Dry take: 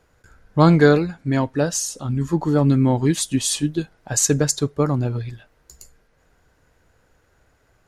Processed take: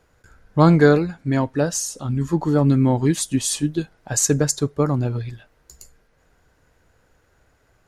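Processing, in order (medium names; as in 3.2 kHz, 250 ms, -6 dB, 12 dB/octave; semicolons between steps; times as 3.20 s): dynamic bell 3.3 kHz, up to -4 dB, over -36 dBFS, Q 1.2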